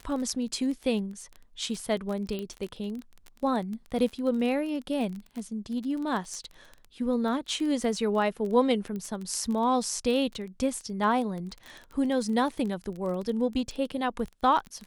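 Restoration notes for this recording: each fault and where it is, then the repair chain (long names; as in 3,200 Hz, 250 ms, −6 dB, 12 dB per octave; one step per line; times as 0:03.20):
surface crackle 24 per second −33 dBFS
0:02.39: click −22 dBFS
0:08.96: click −25 dBFS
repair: click removal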